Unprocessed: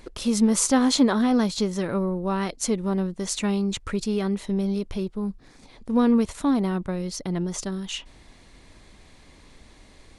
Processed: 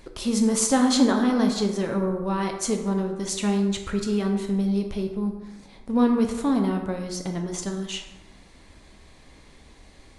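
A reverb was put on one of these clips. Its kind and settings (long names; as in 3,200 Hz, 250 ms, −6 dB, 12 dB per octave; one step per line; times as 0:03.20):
dense smooth reverb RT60 1.1 s, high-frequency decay 0.55×, DRR 3 dB
level −1.5 dB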